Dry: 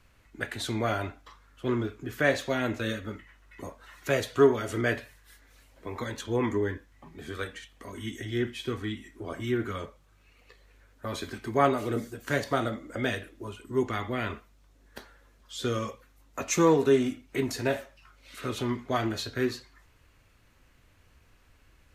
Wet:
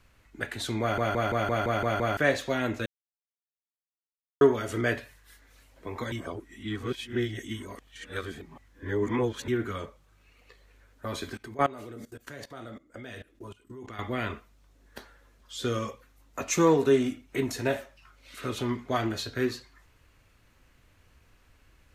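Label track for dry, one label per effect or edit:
0.810000	0.810000	stutter in place 0.17 s, 8 plays
2.860000	4.410000	mute
6.120000	9.480000	reverse
11.370000	13.990000	level held to a coarse grid steps of 21 dB
17.240000	17.760000	band-stop 4.7 kHz

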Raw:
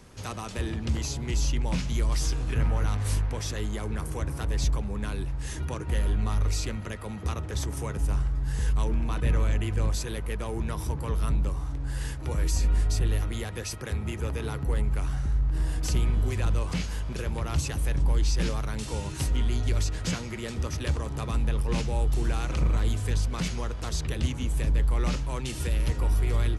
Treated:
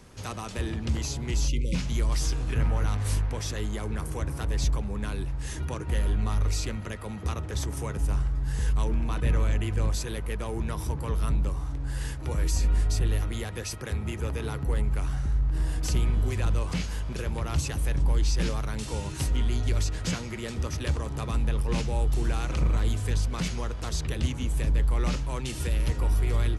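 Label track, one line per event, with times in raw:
1.480000	1.750000	spectral selection erased 570–2000 Hz

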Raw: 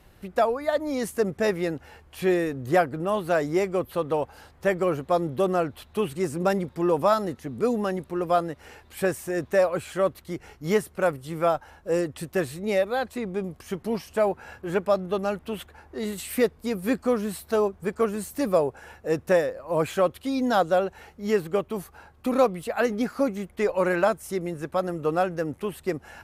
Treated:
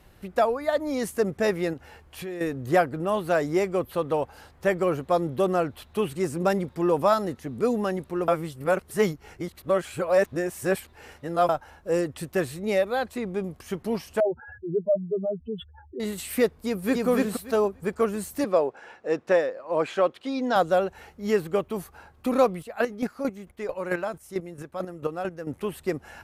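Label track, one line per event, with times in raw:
1.730000	2.410000	compression 4:1, threshold -34 dBFS
8.280000	11.490000	reverse
14.200000	16.000000	spectral contrast enhancement exponent 3.9
16.600000	17.070000	echo throw 290 ms, feedback 15%, level -0.5 dB
18.440000	20.560000	band-pass 260–5100 Hz
22.580000	25.490000	square tremolo 4.5 Hz, depth 65%, duty 20%

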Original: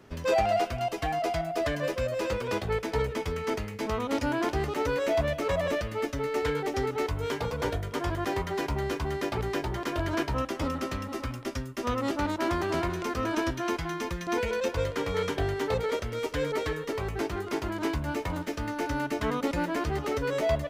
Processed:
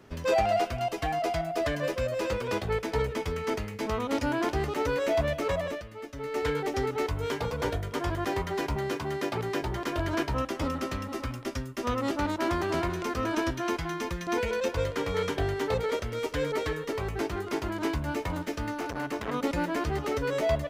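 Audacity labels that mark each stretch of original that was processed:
5.470000	6.470000	dip -10.5 dB, fades 0.37 s
8.760000	9.610000	high-pass 100 Hz 24 dB/octave
18.760000	19.340000	transformer saturation saturates under 1 kHz

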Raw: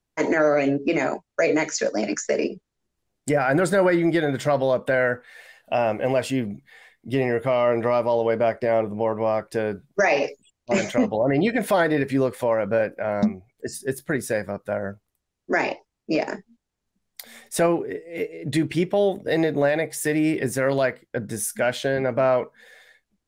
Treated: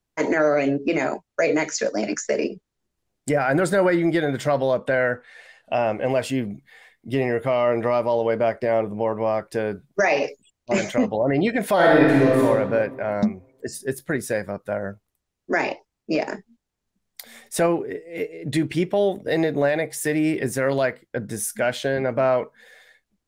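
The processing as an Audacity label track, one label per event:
4.780000	6.100000	Bessel low-pass 8.3 kHz, order 4
11.750000	12.430000	reverb throw, RT60 1.6 s, DRR -5 dB

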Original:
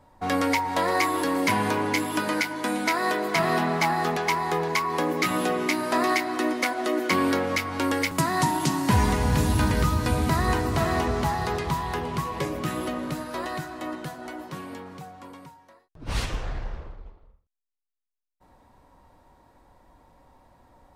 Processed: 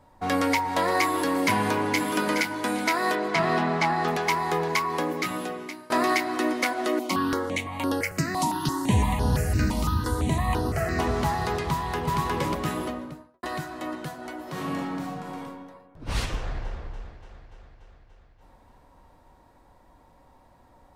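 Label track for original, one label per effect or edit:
1.580000	2.030000	echo throw 420 ms, feedback 25%, level -6.5 dB
3.150000	4.080000	distance through air 64 m
4.790000	5.900000	fade out, to -23 dB
6.990000	10.990000	stepped phaser 5.9 Hz 440–7500 Hz
11.710000	12.180000	echo throw 360 ms, feedback 40%, level -0.5 dB
12.690000	13.430000	studio fade out
14.420000	15.420000	reverb throw, RT60 1.5 s, DRR -5.5 dB
16.350000	16.830000	echo throw 290 ms, feedback 70%, level -10.5 dB

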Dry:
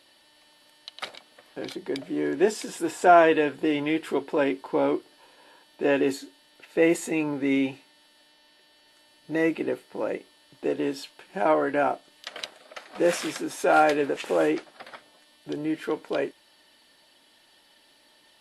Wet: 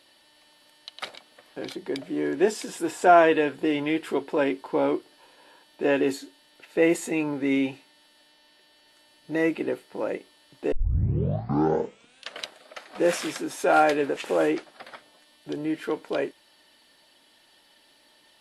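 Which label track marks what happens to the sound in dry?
10.720000	10.720000	tape start 1.68 s

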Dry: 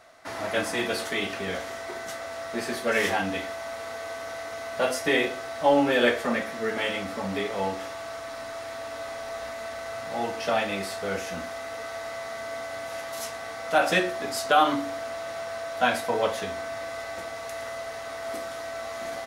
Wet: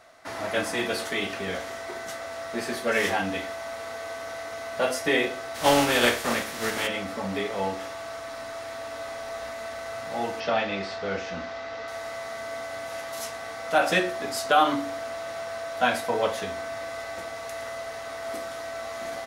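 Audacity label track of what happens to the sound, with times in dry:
5.540000	6.860000	spectral contrast reduction exponent 0.59
10.400000	11.880000	low-pass 5.4 kHz 24 dB/octave

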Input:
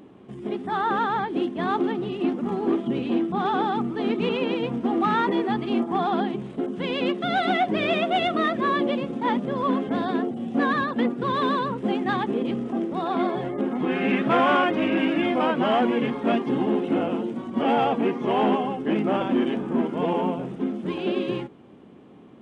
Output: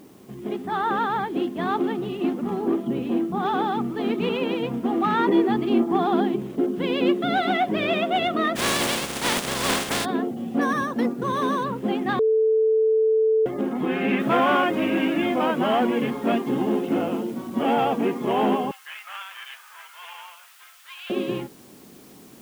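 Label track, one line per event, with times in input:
2.620000	3.430000	treble shelf 2.3 kHz -7.5 dB
5.190000	7.410000	peaking EQ 330 Hz +6.5 dB 0.79 oct
8.550000	10.040000	spectral contrast reduction exponent 0.28
10.610000	11.640000	decimation joined by straight lines rate divided by 6×
12.190000	13.460000	bleep 440 Hz -16 dBFS
14.200000	14.200000	noise floor step -60 dB -53 dB
18.710000	21.100000	inverse Chebyshev high-pass stop band from 290 Hz, stop band 70 dB

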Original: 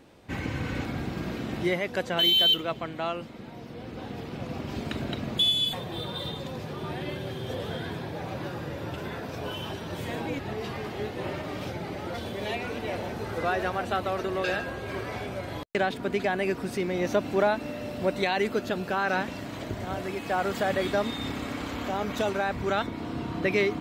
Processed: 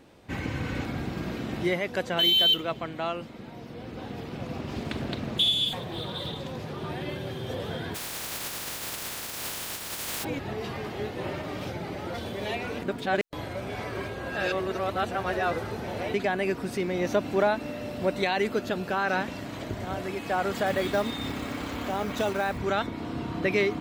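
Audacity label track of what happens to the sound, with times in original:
4.570000	6.890000	loudspeaker Doppler distortion depth 0.24 ms
7.940000	10.230000	spectral contrast reduction exponent 0.13
12.820000	16.140000	reverse
20.660000	22.580000	companded quantiser 6-bit

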